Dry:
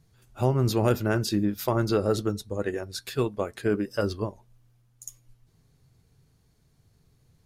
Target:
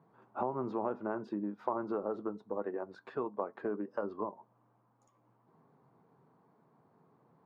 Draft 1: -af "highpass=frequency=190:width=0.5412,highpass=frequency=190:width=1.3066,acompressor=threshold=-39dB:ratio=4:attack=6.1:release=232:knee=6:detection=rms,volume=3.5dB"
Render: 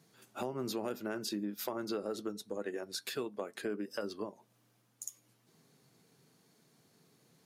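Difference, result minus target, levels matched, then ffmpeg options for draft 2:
1,000 Hz band −5.5 dB
-af "highpass=frequency=190:width=0.5412,highpass=frequency=190:width=1.3066,acompressor=threshold=-39dB:ratio=4:attack=6.1:release=232:knee=6:detection=rms,lowpass=frequency=1000:width_type=q:width=3.1,volume=3.5dB"

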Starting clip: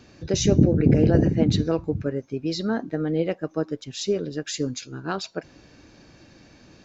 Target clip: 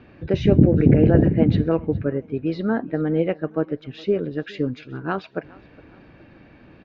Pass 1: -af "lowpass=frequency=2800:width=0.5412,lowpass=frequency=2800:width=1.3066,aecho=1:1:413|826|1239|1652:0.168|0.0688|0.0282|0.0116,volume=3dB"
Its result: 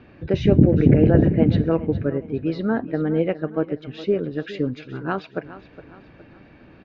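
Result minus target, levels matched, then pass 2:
echo-to-direct +8 dB
-af "lowpass=frequency=2800:width=0.5412,lowpass=frequency=2800:width=1.3066,aecho=1:1:413|826|1239:0.0668|0.0274|0.0112,volume=3dB"

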